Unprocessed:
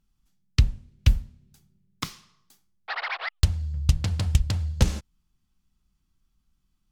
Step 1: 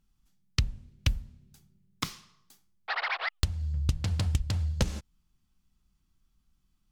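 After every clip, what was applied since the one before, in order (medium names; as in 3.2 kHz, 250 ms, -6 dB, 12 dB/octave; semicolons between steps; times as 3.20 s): compression 3:1, threshold -25 dBFS, peak gain reduction 10 dB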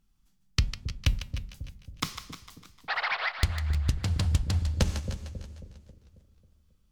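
flange 1.3 Hz, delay 3.5 ms, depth 1 ms, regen -90%; two-band feedback delay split 540 Hz, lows 271 ms, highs 151 ms, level -9.5 dB; modulated delay 313 ms, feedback 37%, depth 107 cents, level -16 dB; trim +6 dB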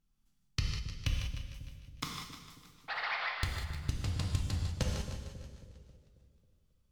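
reverberation, pre-delay 3 ms, DRR 0 dB; trim -8.5 dB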